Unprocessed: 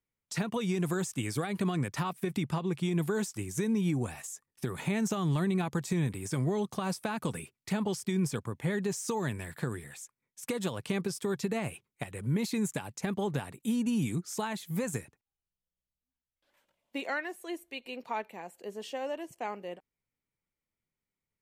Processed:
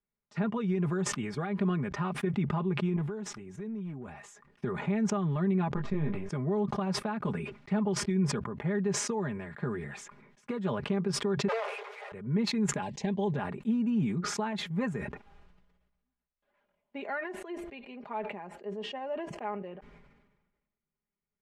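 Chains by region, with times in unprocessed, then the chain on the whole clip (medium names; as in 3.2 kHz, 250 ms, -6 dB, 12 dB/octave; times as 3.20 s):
2.96–4.14 s: overload inside the chain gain 24 dB + band-stop 4.6 kHz, Q 13 + compression 4:1, threshold -38 dBFS
5.75–6.29 s: partial rectifier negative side -7 dB + distance through air 110 m + doubling 20 ms -6 dB
11.48–12.12 s: one-bit comparator + steep high-pass 410 Hz 96 dB/octave
12.82–13.36 s: Butterworth band-stop 1.3 kHz, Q 2.3 + high-order bell 5 kHz +10 dB
whole clip: low-pass 1.8 kHz 12 dB/octave; comb 4.9 ms, depth 67%; decay stretcher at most 46 dB/s; trim -2.5 dB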